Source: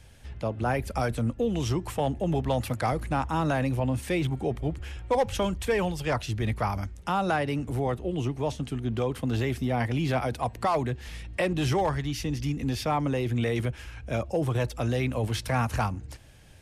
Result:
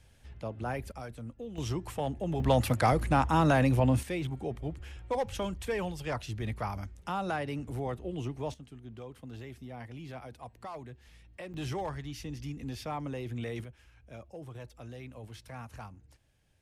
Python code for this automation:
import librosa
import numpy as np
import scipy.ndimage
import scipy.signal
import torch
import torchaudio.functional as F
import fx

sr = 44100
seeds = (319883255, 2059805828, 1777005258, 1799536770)

y = fx.gain(x, sr, db=fx.steps((0.0, -8.0), (0.92, -15.0), (1.58, -6.0), (2.4, 2.0), (4.03, -7.0), (8.54, -17.0), (11.54, -10.0), (13.64, -18.0)))